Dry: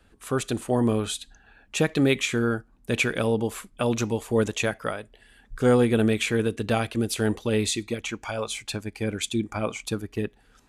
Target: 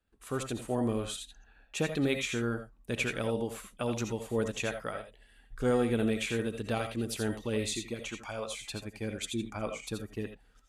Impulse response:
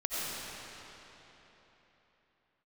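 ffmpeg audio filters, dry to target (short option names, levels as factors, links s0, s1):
-filter_complex "[0:a]agate=range=0.2:threshold=0.00158:ratio=16:detection=peak[s0];[1:a]atrim=start_sample=2205,atrim=end_sample=3969[s1];[s0][s1]afir=irnorm=-1:irlink=0,volume=0.447"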